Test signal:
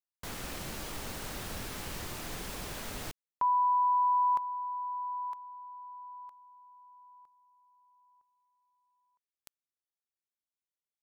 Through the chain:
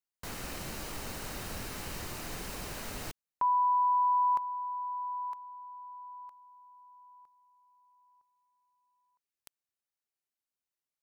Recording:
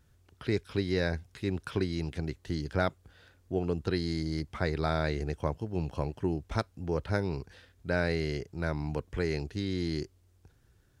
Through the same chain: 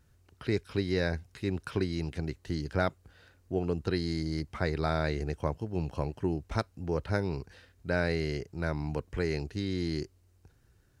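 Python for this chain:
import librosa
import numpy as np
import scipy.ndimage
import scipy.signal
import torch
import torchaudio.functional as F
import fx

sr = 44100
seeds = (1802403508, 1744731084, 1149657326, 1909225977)

y = fx.notch(x, sr, hz=3400.0, q=13.0)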